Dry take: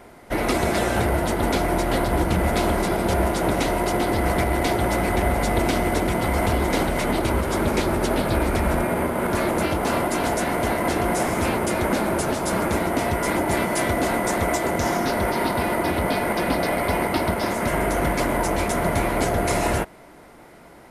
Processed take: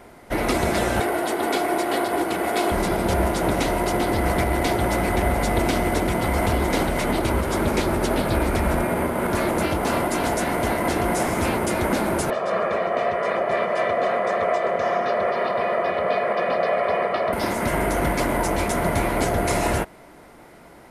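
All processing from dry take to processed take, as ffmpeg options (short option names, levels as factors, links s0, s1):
-filter_complex "[0:a]asettb=1/sr,asplit=3[s0][s1][s2];[s0]atrim=end=1.004[s3];[s1]atrim=start=1:end=2.72,asetpts=PTS-STARTPTS,afade=t=in:d=0.004:c=qsin,afade=t=out:st=1.716:d=0.004:c=qsin,highpass=290,equalizer=f=6000:w=4.8:g=-3.5,aecho=1:1:2.7:0.37,atrim=end_sample=75852[s4];[s2]atrim=start=2.716[s5];[s3][s4]acrossfade=d=0.004:c1=hsin:c2=qsin[s6];[s6][s5]acrossfade=d=0.004:c1=qsin:c2=hsin,asettb=1/sr,asplit=3[s7][s8][s9];[s7]atrim=end=12.304[s10];[s8]atrim=start=12.3:end=17.33,asetpts=PTS-STARTPTS,afade=t=in:d=0.004:c=qsin,afade=t=out:st=5.026:d=0.004:c=qsin,highpass=300,lowpass=2400,aecho=1:1:1.7:0.83,atrim=end_sample=221823[s11];[s9]atrim=start=17.326[s12];[s10][s11]acrossfade=d=0.004:c1=hsin:c2=qsin[s13];[s13][s12]acrossfade=d=0.004:c1=qsin:c2=hsin"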